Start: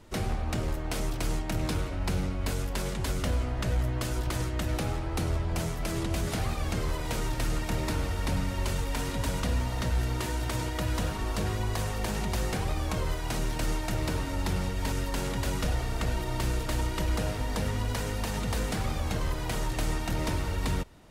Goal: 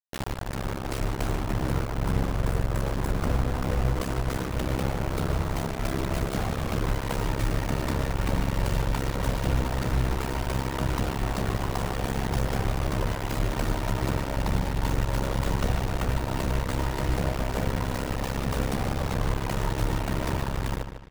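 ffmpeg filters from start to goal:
-filter_complex "[0:a]asettb=1/sr,asplit=3[s0][s1][s2];[s0]atrim=end=1.404[s3];[s1]atrim=start=1.4:end=3.99,asetpts=PTS-STARTPTS,afade=t=in:d=0.004:c=qsin,afade=t=out:st=2.586:d=0.004:c=qsin,equalizer=f=3500:t=o:w=0.81:g=-14.5[s4];[s2]atrim=start=3.986[s5];[s3][s4]acrossfade=d=0.004:c1=hsin:c2=qsin[s6];[s6][s5]acrossfade=d=0.004:c1=qsin:c2=hsin,afftfilt=real='re*gte(hypot(re,im),0.0126)':imag='im*gte(hypot(re,im),0.0126)':win_size=1024:overlap=0.75,dynaudnorm=f=230:g=7:m=2.11,tremolo=f=67:d=0.857,aeval=exprs='0.237*(cos(1*acos(clip(val(0)/0.237,-1,1)))-cos(1*PI/2))+0.00531*(cos(3*acos(clip(val(0)/0.237,-1,1)))-cos(3*PI/2))+0.00266*(cos(6*acos(clip(val(0)/0.237,-1,1)))-cos(6*PI/2))':c=same,acrusher=bits=4:mix=0:aa=0.000001,asplit=2[s7][s8];[s8]adelay=150,lowpass=f=4700:p=1,volume=0.376,asplit=2[s9][s10];[s10]adelay=150,lowpass=f=4700:p=1,volume=0.37,asplit=2[s11][s12];[s12]adelay=150,lowpass=f=4700:p=1,volume=0.37,asplit=2[s13][s14];[s14]adelay=150,lowpass=f=4700:p=1,volume=0.37[s15];[s7][s9][s11][s13][s15]amix=inputs=5:normalize=0,adynamicequalizer=threshold=0.00501:dfrequency=1800:dqfactor=0.7:tfrequency=1800:tqfactor=0.7:attack=5:release=100:ratio=0.375:range=3:mode=cutabove:tftype=highshelf"

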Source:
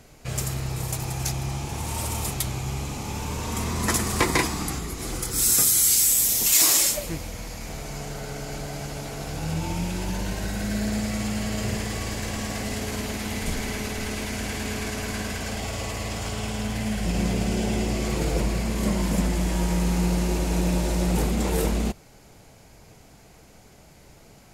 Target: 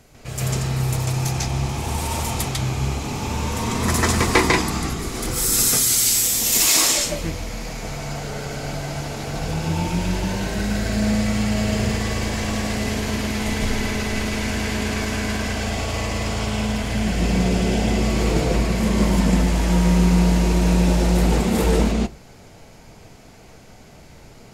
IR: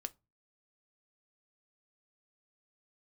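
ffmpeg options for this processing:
-filter_complex "[0:a]asplit=2[s0][s1];[1:a]atrim=start_sample=2205,lowpass=6200,adelay=146[s2];[s1][s2]afir=irnorm=-1:irlink=0,volume=2.66[s3];[s0][s3]amix=inputs=2:normalize=0,volume=0.891"

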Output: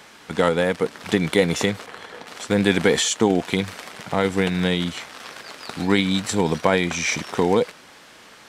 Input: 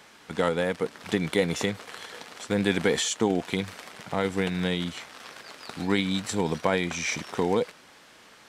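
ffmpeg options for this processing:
-filter_complex "[0:a]asettb=1/sr,asplit=3[s0][s1][s2];[s0]atrim=end=1.864[s3];[s1]atrim=start=1.86:end=2.27,asetpts=PTS-STARTPTS,afade=t=in:d=0.004:c=qsin,afade=t=out:st=0.406:d=0.004:c=qsin,highshelf=f=2700:g=-11.5[s4];[s2]atrim=start=2.266[s5];[s3][s4]acrossfade=d=0.004:c1=hsin:c2=qsin[s6];[s6][s5]acrossfade=d=0.004:c1=qsin:c2=hsin,volume=2"

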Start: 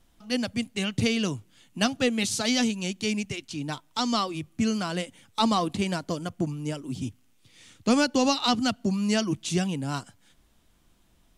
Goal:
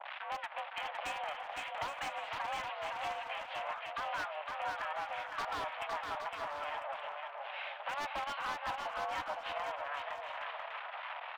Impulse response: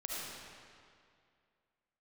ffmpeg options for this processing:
-filter_complex "[0:a]aeval=exprs='val(0)+0.5*0.0422*sgn(val(0))':c=same,acrossover=split=1000[s0][s1];[s0]aeval=exprs='val(0)*(1-0.7/2+0.7/2*cos(2*PI*3.2*n/s))':c=same[s2];[s1]aeval=exprs='val(0)*(1-0.7/2-0.7/2*cos(2*PI*3.2*n/s))':c=same[s3];[s2][s3]amix=inputs=2:normalize=0,aeval=exprs='0.316*(cos(1*acos(clip(val(0)/0.316,-1,1)))-cos(1*PI/2))+0.00708*(cos(4*acos(clip(val(0)/0.316,-1,1)))-cos(4*PI/2))+0.0141*(cos(6*acos(clip(val(0)/0.316,-1,1)))-cos(6*PI/2))+0.0501*(cos(8*acos(clip(val(0)/0.316,-1,1)))-cos(8*PI/2))':c=same,asplit=2[s4][s5];[s5]asetrate=29433,aresample=44100,atempo=1.49831,volume=0.398[s6];[s4][s6]amix=inputs=2:normalize=0,aeval=exprs='(tanh(5.01*val(0)+0.55)-tanh(0.55))/5.01':c=same,highpass=f=420:t=q:w=0.5412,highpass=f=420:t=q:w=1.307,lowpass=f=2700:t=q:w=0.5176,lowpass=f=2700:t=q:w=0.7071,lowpass=f=2700:t=q:w=1.932,afreqshift=290,aeval=exprs='0.0562*(abs(mod(val(0)/0.0562+3,4)-2)-1)':c=same,acompressor=threshold=0.00562:ratio=3,aecho=1:1:510|816|999.6|1110|1176:0.631|0.398|0.251|0.158|0.1,adynamicequalizer=threshold=0.00251:dfrequency=1800:dqfactor=0.7:tfrequency=1800:tqfactor=0.7:attack=5:release=100:ratio=0.375:range=2.5:mode=cutabove:tftype=highshelf,volume=1.78"

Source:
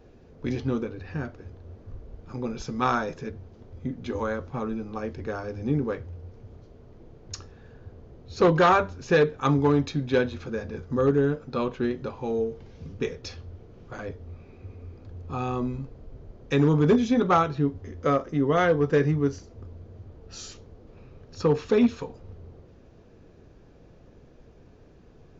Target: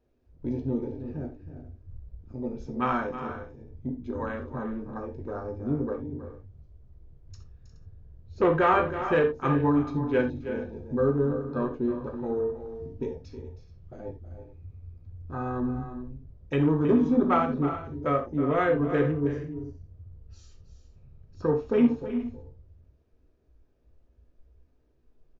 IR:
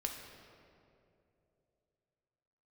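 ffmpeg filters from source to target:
-filter_complex "[0:a]afwtdn=0.02,aecho=1:1:319|356|421:0.237|0.188|0.126[s0];[1:a]atrim=start_sample=2205,atrim=end_sample=3969[s1];[s0][s1]afir=irnorm=-1:irlink=0,volume=0.794"

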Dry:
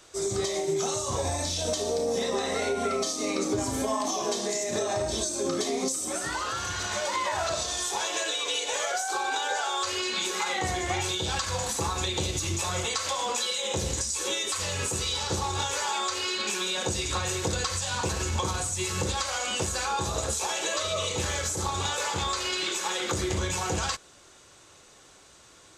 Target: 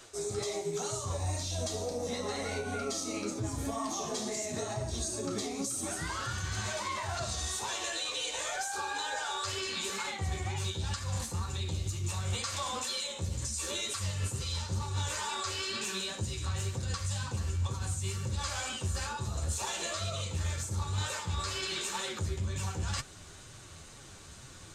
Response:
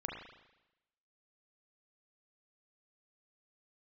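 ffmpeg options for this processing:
-af "asubboost=boost=4:cutoff=200,areverse,acompressor=threshold=0.0178:ratio=6,areverse,flanger=delay=7.3:depth=6.6:regen=35:speed=2:shape=triangular,asetrate=45938,aresample=44100,volume=2"

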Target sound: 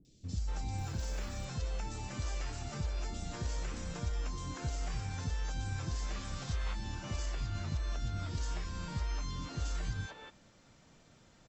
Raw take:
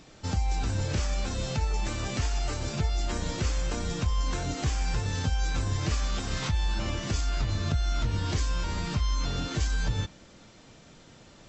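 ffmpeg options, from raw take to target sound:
-filter_complex "[0:a]asettb=1/sr,asplit=3[s0][s1][s2];[s0]atrim=end=0.734[s3];[s1]atrim=start=0.73:end=1.4,asetpts=PTS-STARTPTS,afade=t=in:d=0.004:c=qsin,afade=t=out:st=0.666:d=0.004:c=qsin,acrusher=bits=8:mode=log:mix=0:aa=0.000001[s4];[s2]atrim=start=1.396[s5];[s3][s4]acrossfade=d=0.004:c1=hsin:c2=qsin[s6];[s6][s5]acrossfade=d=0.004:c1=qsin:c2=hsin,acrossover=split=380|3400[s7][s8][s9];[s9]adelay=50[s10];[s8]adelay=240[s11];[s7][s11][s10]amix=inputs=3:normalize=0,volume=0.376"

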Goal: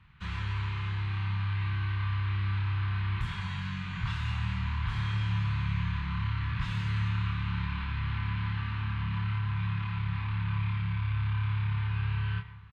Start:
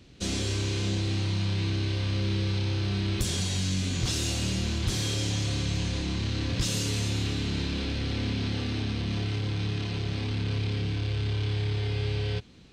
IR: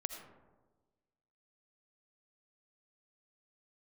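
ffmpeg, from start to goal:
-filter_complex "[0:a]firequalizer=gain_entry='entry(170,0);entry(250,-20);entry(610,-21);entry(960,9);entry(1900,4);entry(5500,-25);entry(11000,-27)':delay=0.05:min_phase=1,asplit=2[s0][s1];[1:a]atrim=start_sample=2205,adelay=28[s2];[s1][s2]afir=irnorm=-1:irlink=0,volume=0.708[s3];[s0][s3]amix=inputs=2:normalize=0,volume=0.631"

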